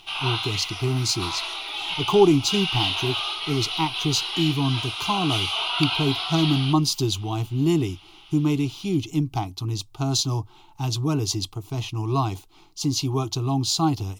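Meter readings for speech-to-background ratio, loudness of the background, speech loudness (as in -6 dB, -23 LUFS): 2.0 dB, -26.5 LUFS, -24.5 LUFS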